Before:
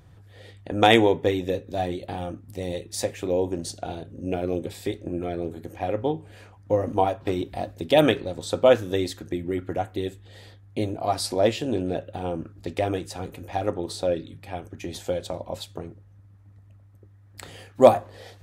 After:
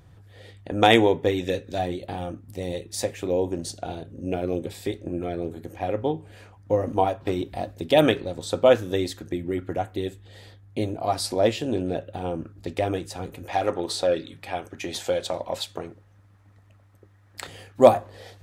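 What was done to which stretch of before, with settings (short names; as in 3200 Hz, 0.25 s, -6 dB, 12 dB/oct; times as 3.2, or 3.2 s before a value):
1.38–1.78 spectral gain 1300–9700 Hz +6 dB
13.45–17.47 overdrive pedal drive 12 dB, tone 7500 Hz, clips at -10.5 dBFS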